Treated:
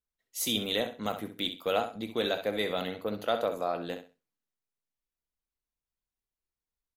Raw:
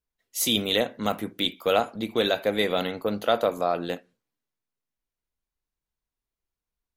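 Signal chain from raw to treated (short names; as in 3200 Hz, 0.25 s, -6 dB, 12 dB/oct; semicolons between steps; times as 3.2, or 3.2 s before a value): feedback echo 65 ms, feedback 22%, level -10 dB; gain -6.5 dB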